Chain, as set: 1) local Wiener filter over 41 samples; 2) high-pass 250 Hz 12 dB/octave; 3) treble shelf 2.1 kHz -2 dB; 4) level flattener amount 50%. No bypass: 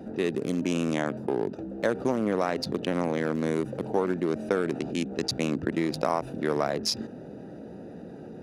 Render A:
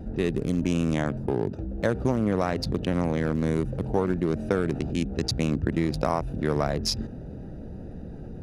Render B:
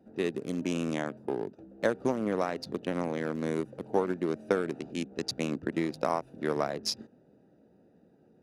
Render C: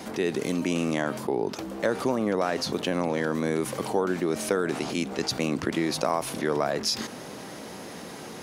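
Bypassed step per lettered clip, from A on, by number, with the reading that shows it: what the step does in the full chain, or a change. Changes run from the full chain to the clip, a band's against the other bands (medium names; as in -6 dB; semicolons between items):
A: 2, 125 Hz band +8.5 dB; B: 4, crest factor change +3.0 dB; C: 1, 8 kHz band +4.0 dB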